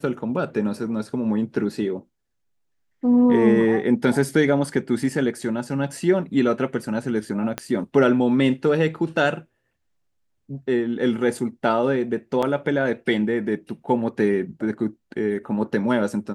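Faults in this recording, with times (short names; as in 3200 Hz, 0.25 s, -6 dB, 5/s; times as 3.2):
7.58 pop -11 dBFS
12.42–12.43 gap 5.9 ms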